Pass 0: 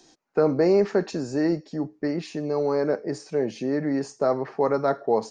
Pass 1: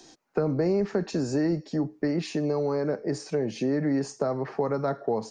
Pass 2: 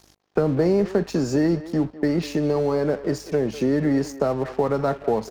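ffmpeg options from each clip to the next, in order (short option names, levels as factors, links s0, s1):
-filter_complex "[0:a]acrossover=split=190[s0][s1];[s1]acompressor=threshold=0.0355:ratio=6[s2];[s0][s2]amix=inputs=2:normalize=0,volume=1.58"
-filter_complex "[0:a]aeval=exprs='val(0)+0.00316*(sin(2*PI*50*n/s)+sin(2*PI*2*50*n/s)/2+sin(2*PI*3*50*n/s)/3+sin(2*PI*4*50*n/s)/4+sin(2*PI*5*50*n/s)/5)':c=same,aeval=exprs='sgn(val(0))*max(abs(val(0))-0.00473,0)':c=same,asplit=2[s0][s1];[s1]adelay=200,highpass=300,lowpass=3400,asoftclip=type=hard:threshold=0.0708,volume=0.2[s2];[s0][s2]amix=inputs=2:normalize=0,volume=1.88"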